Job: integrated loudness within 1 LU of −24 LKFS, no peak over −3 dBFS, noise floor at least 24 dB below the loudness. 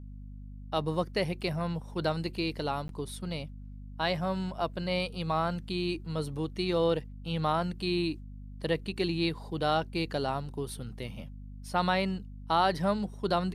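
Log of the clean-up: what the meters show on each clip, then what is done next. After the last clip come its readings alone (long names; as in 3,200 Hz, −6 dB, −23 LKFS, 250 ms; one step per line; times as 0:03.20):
number of dropouts 1; longest dropout 12 ms; mains hum 50 Hz; hum harmonics up to 250 Hz; level of the hum −41 dBFS; integrated loudness −31.5 LKFS; sample peak −14.0 dBFS; target loudness −24.0 LKFS
→ repair the gap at 0:02.88, 12 ms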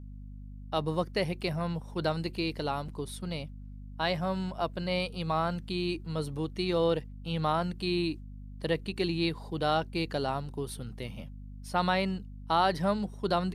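number of dropouts 0; mains hum 50 Hz; hum harmonics up to 250 Hz; level of the hum −41 dBFS
→ mains-hum notches 50/100/150/200/250 Hz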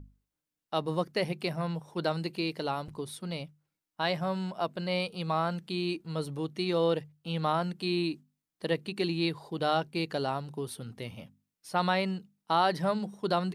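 mains hum none found; integrated loudness −32.0 LKFS; sample peak −14.5 dBFS; target loudness −24.0 LKFS
→ level +8 dB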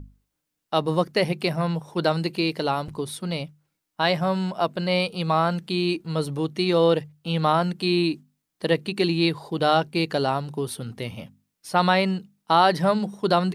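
integrated loudness −24.0 LKFS; sample peak −6.5 dBFS; background noise floor −81 dBFS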